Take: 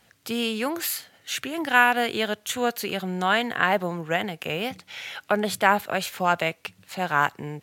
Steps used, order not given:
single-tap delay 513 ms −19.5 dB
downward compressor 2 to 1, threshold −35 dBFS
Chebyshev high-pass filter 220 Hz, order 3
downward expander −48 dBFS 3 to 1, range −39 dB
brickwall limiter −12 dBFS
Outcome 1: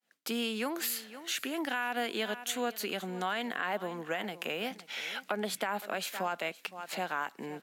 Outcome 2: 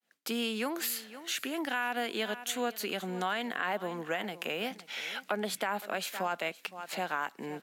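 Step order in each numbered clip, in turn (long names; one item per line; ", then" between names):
single-tap delay, then brickwall limiter, then downward compressor, then downward expander, then Chebyshev high-pass filter
single-tap delay, then downward expander, then Chebyshev high-pass filter, then brickwall limiter, then downward compressor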